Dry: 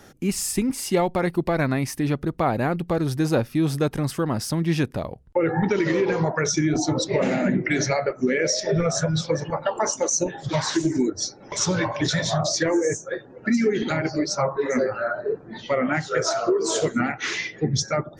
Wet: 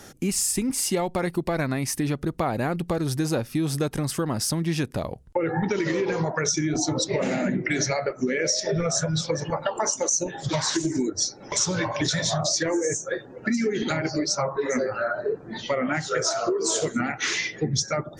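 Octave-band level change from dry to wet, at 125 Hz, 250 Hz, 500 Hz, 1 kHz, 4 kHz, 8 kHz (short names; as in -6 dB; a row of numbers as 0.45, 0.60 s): -3.0, -3.0, -3.0, -2.5, +1.0, +2.0 dB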